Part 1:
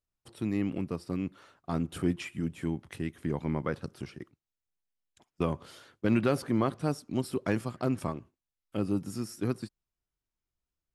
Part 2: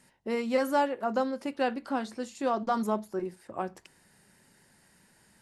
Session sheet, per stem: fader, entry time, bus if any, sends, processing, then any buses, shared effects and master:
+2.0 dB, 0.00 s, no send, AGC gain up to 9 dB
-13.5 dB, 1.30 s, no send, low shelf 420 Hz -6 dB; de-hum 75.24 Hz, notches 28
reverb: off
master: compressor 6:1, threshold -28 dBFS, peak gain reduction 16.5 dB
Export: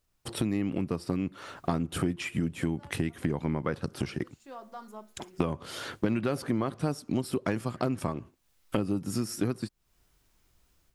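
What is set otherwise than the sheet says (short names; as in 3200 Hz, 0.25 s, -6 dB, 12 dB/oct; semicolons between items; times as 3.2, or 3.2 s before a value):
stem 1 +2.0 dB -> +13.0 dB; stem 2: entry 1.30 s -> 2.05 s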